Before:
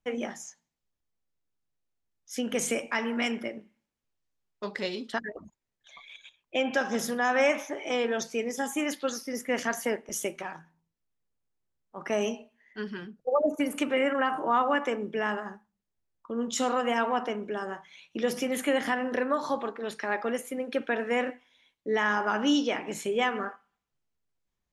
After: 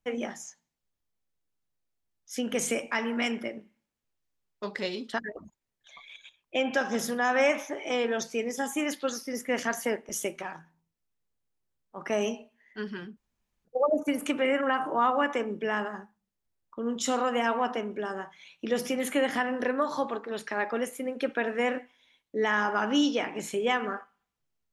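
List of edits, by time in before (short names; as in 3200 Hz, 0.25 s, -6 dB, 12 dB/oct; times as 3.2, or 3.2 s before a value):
13.17 insert room tone 0.48 s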